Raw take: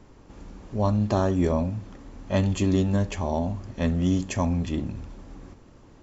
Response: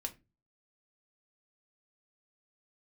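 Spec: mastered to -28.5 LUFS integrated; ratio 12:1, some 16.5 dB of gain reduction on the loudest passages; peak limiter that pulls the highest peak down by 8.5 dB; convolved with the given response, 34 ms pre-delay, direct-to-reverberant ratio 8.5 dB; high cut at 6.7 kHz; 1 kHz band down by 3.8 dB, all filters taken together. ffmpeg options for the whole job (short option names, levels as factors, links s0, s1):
-filter_complex "[0:a]lowpass=6700,equalizer=f=1000:t=o:g=-5,acompressor=threshold=0.0158:ratio=12,alimiter=level_in=3.16:limit=0.0631:level=0:latency=1,volume=0.316,asplit=2[s0][s1];[1:a]atrim=start_sample=2205,adelay=34[s2];[s1][s2]afir=irnorm=-1:irlink=0,volume=0.422[s3];[s0][s3]amix=inputs=2:normalize=0,volume=5.62"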